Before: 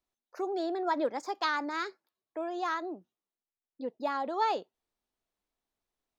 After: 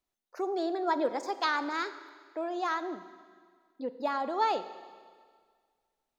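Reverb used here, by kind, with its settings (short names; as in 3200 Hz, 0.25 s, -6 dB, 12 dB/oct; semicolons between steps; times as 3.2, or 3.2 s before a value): Schroeder reverb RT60 1.8 s, combs from 33 ms, DRR 12 dB; gain +1 dB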